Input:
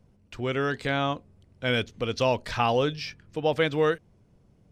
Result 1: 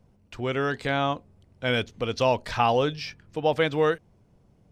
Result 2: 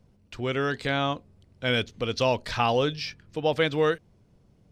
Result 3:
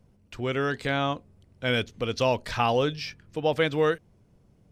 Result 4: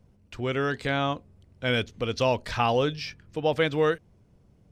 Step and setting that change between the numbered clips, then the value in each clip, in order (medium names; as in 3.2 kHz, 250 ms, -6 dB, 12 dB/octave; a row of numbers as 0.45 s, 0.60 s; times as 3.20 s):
peaking EQ, frequency: 820 Hz, 4.2 kHz, 13 kHz, 67 Hz